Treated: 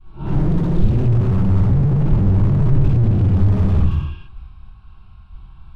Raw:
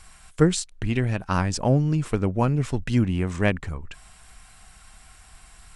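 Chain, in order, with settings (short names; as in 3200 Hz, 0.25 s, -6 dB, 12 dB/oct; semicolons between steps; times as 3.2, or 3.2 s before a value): spectral swells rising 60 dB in 0.53 s; expander -37 dBFS; harmoniser +4 st -13 dB, +12 st -7 dB; LPF 3600 Hz 12 dB/oct; tilt -3 dB/oct; in parallel at -2 dB: compressor, threshold -23 dBFS, peak gain reduction 17.5 dB; on the sum: fixed phaser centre 1900 Hz, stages 6; reverb, pre-delay 3 ms, DRR -8 dB; slew limiter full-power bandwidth 45 Hz; gain -4 dB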